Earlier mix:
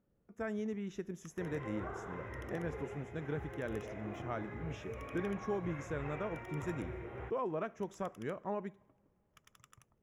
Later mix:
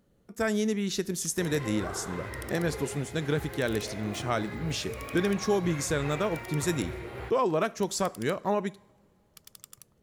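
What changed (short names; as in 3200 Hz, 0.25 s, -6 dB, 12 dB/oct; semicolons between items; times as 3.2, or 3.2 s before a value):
speech +10.5 dB; second sound +5.5 dB; master: remove running mean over 10 samples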